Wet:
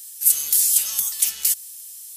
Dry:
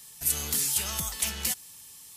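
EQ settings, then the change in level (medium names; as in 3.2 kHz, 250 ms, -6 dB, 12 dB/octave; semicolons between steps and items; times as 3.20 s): tilt EQ +3.5 dB/octave; treble shelf 3.1 kHz +7.5 dB; band-stop 790 Hz, Q 12; -8.5 dB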